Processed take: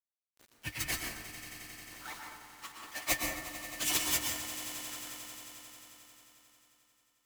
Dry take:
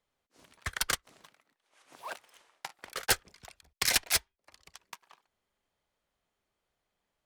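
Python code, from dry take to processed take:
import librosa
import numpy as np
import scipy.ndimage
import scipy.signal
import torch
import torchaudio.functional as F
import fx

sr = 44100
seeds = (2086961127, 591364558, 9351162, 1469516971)

p1 = fx.pitch_bins(x, sr, semitones=6.0)
p2 = fx.peak_eq(p1, sr, hz=1600.0, db=-3.0, octaves=0.37)
p3 = fx.small_body(p2, sr, hz=(300.0, 1800.0), ring_ms=95, db=15)
p4 = fx.quant_companded(p3, sr, bits=4)
p5 = p4 + fx.echo_swell(p4, sr, ms=89, loudest=5, wet_db=-16, dry=0)
y = fx.rev_plate(p5, sr, seeds[0], rt60_s=0.89, hf_ratio=0.45, predelay_ms=105, drr_db=1.5)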